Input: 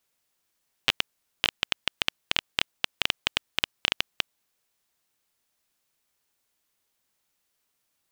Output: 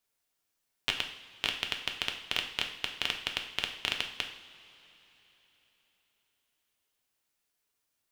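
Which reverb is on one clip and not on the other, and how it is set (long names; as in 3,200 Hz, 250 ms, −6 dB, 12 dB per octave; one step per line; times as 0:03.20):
coupled-rooms reverb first 0.6 s, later 4 s, from −18 dB, DRR 3 dB
level −6.5 dB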